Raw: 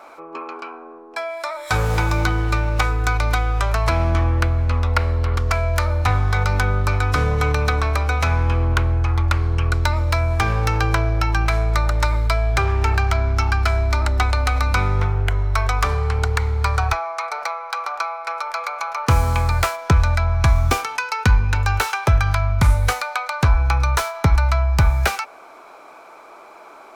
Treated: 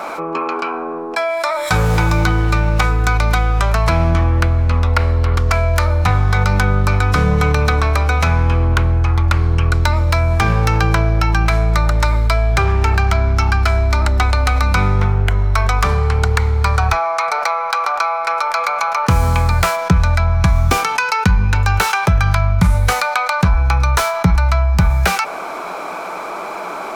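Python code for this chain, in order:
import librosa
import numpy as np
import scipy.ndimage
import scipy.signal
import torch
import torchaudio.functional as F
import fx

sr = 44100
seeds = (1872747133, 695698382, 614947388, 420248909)

y = fx.peak_eq(x, sr, hz=180.0, db=14.0, octaves=0.28)
y = fx.env_flatten(y, sr, amount_pct=50)
y = y * librosa.db_to_amplitude(-1.0)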